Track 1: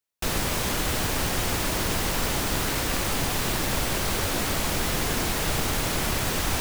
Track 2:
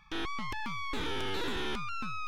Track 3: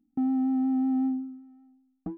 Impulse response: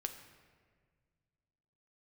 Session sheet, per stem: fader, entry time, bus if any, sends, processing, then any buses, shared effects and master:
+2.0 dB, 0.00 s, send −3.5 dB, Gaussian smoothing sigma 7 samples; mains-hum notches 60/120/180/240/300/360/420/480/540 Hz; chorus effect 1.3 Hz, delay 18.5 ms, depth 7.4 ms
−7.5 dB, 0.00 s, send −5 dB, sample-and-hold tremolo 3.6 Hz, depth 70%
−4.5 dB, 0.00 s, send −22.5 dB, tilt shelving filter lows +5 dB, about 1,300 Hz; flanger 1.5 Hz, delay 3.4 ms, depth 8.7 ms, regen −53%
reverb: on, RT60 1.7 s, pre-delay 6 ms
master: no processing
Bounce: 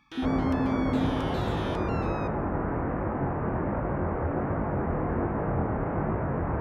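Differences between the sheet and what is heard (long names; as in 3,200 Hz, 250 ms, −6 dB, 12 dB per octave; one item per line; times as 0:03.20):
stem 2: missing sample-and-hold tremolo 3.6 Hz, depth 70%
master: extra high-pass filter 57 Hz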